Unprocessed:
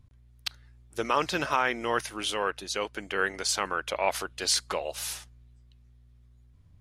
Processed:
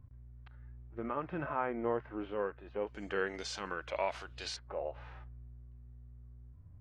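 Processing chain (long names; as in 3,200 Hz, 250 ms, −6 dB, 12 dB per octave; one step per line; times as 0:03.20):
downward compressor 2 to 1, threshold −35 dBFS, peak gain reduction 8.5 dB
Bessel low-pass filter 1,300 Hz, order 4, from 0:02.86 5,100 Hz, from 0:04.55 1,200 Hz
harmonic and percussive parts rebalanced percussive −16 dB
level +5 dB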